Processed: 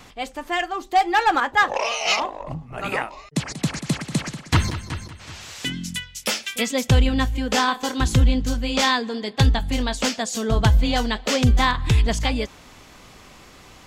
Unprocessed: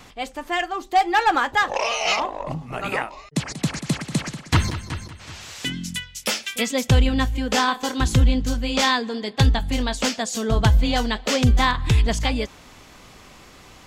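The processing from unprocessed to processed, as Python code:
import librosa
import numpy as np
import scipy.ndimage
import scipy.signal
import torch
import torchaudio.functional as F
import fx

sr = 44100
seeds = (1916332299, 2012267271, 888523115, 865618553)

y = fx.band_widen(x, sr, depth_pct=70, at=(1.4, 2.78))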